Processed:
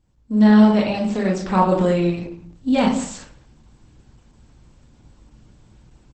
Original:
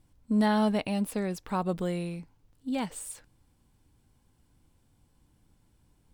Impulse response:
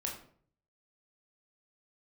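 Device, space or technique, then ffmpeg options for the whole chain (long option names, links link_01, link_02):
speakerphone in a meeting room: -filter_complex "[1:a]atrim=start_sample=2205[link_01];[0:a][link_01]afir=irnorm=-1:irlink=0,asplit=2[link_02][link_03];[link_03]adelay=190,highpass=300,lowpass=3400,asoftclip=type=hard:threshold=-18.5dB,volume=-20dB[link_04];[link_02][link_04]amix=inputs=2:normalize=0,dynaudnorm=framelen=290:gausssize=3:maxgain=14.5dB" -ar 48000 -c:a libopus -b:a 12k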